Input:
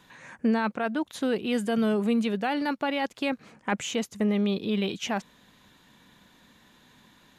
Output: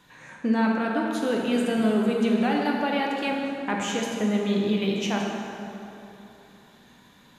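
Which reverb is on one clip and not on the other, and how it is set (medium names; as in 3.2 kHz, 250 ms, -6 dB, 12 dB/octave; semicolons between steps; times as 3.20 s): plate-style reverb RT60 3.1 s, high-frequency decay 0.6×, DRR -1.5 dB; trim -1 dB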